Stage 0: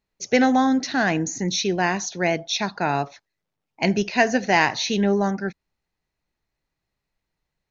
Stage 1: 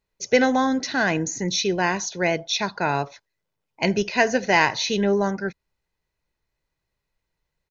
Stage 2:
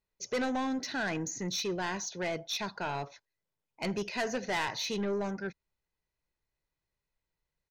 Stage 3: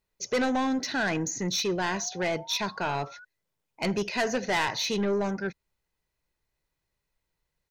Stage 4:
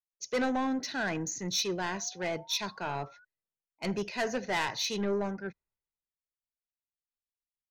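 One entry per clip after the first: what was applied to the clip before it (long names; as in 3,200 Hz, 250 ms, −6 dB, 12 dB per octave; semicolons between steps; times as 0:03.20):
comb filter 2 ms, depth 32%
soft clipping −19 dBFS, distortion −9 dB; level −8 dB
sound drawn into the spectrogram rise, 0:01.92–0:03.25, 650–1,500 Hz −54 dBFS; level +5.5 dB
multiband upward and downward expander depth 70%; level −4.5 dB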